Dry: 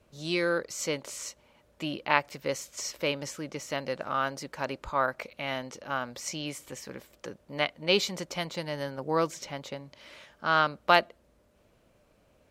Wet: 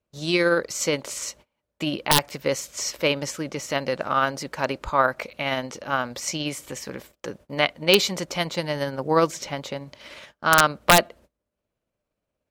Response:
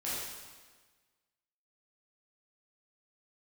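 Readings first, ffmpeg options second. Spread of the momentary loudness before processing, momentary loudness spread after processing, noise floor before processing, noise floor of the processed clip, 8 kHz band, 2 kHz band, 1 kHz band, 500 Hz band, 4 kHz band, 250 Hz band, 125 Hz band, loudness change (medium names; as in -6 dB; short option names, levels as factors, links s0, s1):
17 LU, 17 LU, -65 dBFS, -83 dBFS, +9.5 dB, +6.5 dB, +6.0 dB, +7.0 dB, +8.0 dB, +7.5 dB, +8.0 dB, +7.0 dB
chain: -af "agate=range=0.0562:threshold=0.00224:ratio=16:detection=peak,tremolo=f=17:d=0.29,aeval=exprs='(mod(3.76*val(0)+1,2)-1)/3.76':c=same,volume=2.66"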